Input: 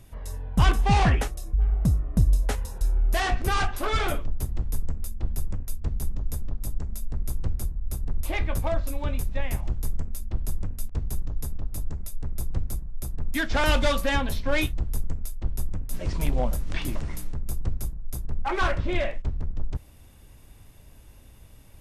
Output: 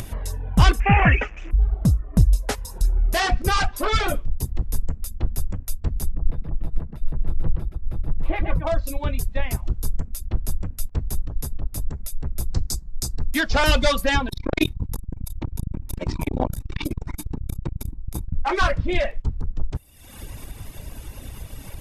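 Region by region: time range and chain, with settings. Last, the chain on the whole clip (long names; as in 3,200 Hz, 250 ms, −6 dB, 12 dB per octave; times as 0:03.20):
0:00.80–0:01.51: linear delta modulator 32 kbit/s, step −34.5 dBFS + drawn EQ curve 1,000 Hz 0 dB, 2,600 Hz +11 dB, 4,200 Hz −28 dB, 7,100 Hz −8 dB
0:06.10–0:08.67: high-frequency loss of the air 490 metres + comb filter 6.1 ms, depth 36% + single-tap delay 124 ms −3.5 dB
0:12.54–0:13.25: flat-topped bell 5,800 Hz +11.5 dB 1.3 octaves + notch filter 580 Hz, Q 7.4
0:14.28–0:18.34: hollow resonant body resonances 270/910/2,300/3,700 Hz, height 10 dB, ringing for 20 ms + saturating transformer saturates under 300 Hz
whole clip: reverb reduction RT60 1 s; dynamic equaliser 5,000 Hz, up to +5 dB, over −52 dBFS, Q 2.3; upward compression, threshold −27 dBFS; level +5 dB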